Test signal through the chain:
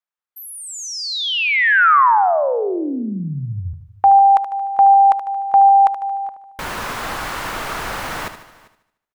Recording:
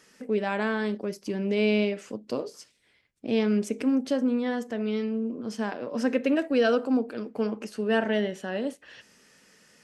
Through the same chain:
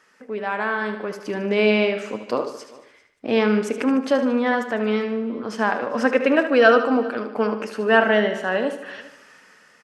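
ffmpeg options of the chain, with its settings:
ffmpeg -i in.wav -filter_complex "[0:a]asplit=2[link_01][link_02];[link_02]aecho=0:1:75|150|225|300|375|450:0.299|0.155|0.0807|0.042|0.0218|0.0114[link_03];[link_01][link_03]amix=inputs=2:normalize=0,dynaudnorm=framelen=230:gausssize=9:maxgain=10dB,equalizer=frequency=1200:width=0.53:gain=14.5,asplit=2[link_04][link_05];[link_05]aecho=0:1:396:0.0708[link_06];[link_04][link_06]amix=inputs=2:normalize=0,volume=-8.5dB" out.wav

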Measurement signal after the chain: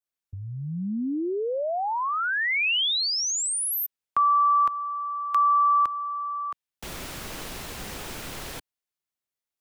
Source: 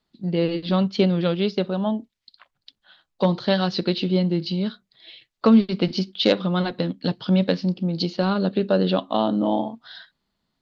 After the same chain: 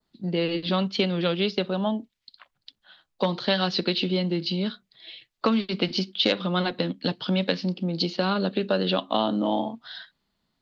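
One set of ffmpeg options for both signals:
ffmpeg -i in.wav -filter_complex "[0:a]acrossover=split=180|950[link_01][link_02][link_03];[link_01]acompressor=threshold=-39dB:ratio=4[link_04];[link_02]acompressor=threshold=-23dB:ratio=4[link_05];[link_03]acompressor=threshold=-23dB:ratio=4[link_06];[link_04][link_05][link_06]amix=inputs=3:normalize=0,adynamicequalizer=threshold=0.00708:dfrequency=2800:dqfactor=1.1:tfrequency=2800:tqfactor=1.1:attack=5:release=100:ratio=0.375:range=2:mode=boostabove:tftype=bell" out.wav

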